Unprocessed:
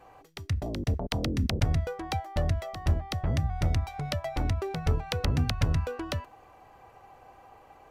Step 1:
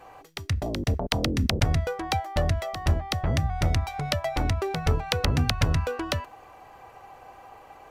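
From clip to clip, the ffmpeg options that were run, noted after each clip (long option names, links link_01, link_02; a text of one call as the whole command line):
ffmpeg -i in.wav -af "lowshelf=frequency=450:gain=-5,volume=7dB" out.wav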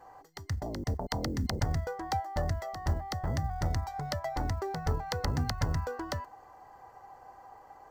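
ffmpeg -i in.wav -af "acrusher=bits=9:mode=log:mix=0:aa=0.000001,superequalizer=9b=1.58:12b=0.251:13b=0.398:16b=0.501,volume=-7dB" out.wav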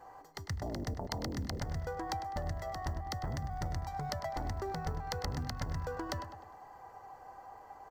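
ffmpeg -i in.wav -filter_complex "[0:a]acompressor=threshold=-34dB:ratio=6,asplit=2[link_01][link_02];[link_02]adelay=101,lowpass=frequency=4300:poles=1,volume=-10dB,asplit=2[link_03][link_04];[link_04]adelay=101,lowpass=frequency=4300:poles=1,volume=0.49,asplit=2[link_05][link_06];[link_06]adelay=101,lowpass=frequency=4300:poles=1,volume=0.49,asplit=2[link_07][link_08];[link_08]adelay=101,lowpass=frequency=4300:poles=1,volume=0.49,asplit=2[link_09][link_10];[link_10]adelay=101,lowpass=frequency=4300:poles=1,volume=0.49[link_11];[link_01][link_03][link_05][link_07][link_09][link_11]amix=inputs=6:normalize=0" out.wav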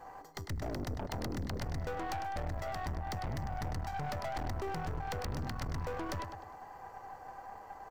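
ffmpeg -i in.wav -af "aeval=exprs='(tanh(100*val(0)+0.6)-tanh(0.6))/100':channel_layout=same,volume=6dB" out.wav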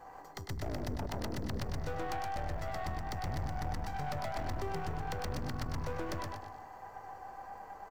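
ffmpeg -i in.wav -af "aecho=1:1:121|242|363|484:0.668|0.194|0.0562|0.0163,volume=-1.5dB" out.wav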